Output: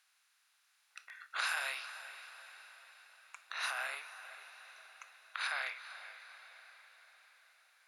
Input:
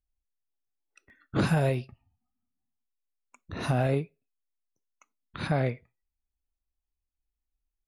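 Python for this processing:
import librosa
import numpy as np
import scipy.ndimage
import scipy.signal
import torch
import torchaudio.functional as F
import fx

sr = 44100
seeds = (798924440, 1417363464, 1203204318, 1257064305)

y = fx.bin_compress(x, sr, power=0.6)
y = scipy.signal.sosfilt(scipy.signal.butter(4, 1200.0, 'highpass', fs=sr, output='sos'), y)
y = fx.echo_diffused(y, sr, ms=454, feedback_pct=56, wet_db=-12.5)
y = fx.dynamic_eq(y, sr, hz=4100.0, q=1.1, threshold_db=-55.0, ratio=4.0, max_db=-5, at=(3.7, 5.41))
y = F.gain(torch.from_numpy(y), -1.0).numpy()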